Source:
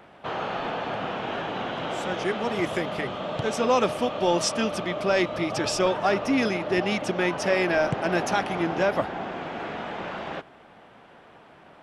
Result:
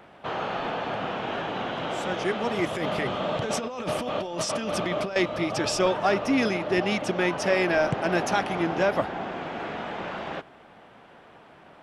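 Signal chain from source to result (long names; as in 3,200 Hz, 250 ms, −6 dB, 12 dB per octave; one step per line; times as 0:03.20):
0:02.75–0:05.16: compressor whose output falls as the input rises −29 dBFS, ratio −1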